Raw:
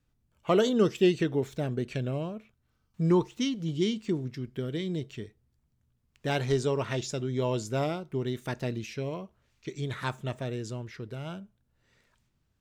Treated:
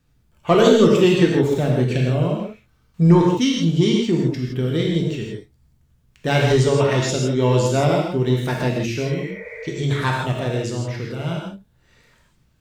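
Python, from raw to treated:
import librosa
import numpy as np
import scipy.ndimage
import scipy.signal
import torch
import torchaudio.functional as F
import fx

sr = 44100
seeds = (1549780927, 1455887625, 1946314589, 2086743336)

p1 = 10.0 ** (-22.0 / 20.0) * np.tanh(x / 10.0 ** (-22.0 / 20.0))
p2 = x + (p1 * librosa.db_to_amplitude(-4.5))
p3 = fx.spec_repair(p2, sr, seeds[0], start_s=9.1, length_s=0.54, low_hz=450.0, high_hz=2500.0, source='after')
p4 = fx.rev_gated(p3, sr, seeds[1], gate_ms=190, shape='flat', drr_db=-1.5)
y = p4 * librosa.db_to_amplitude(4.5)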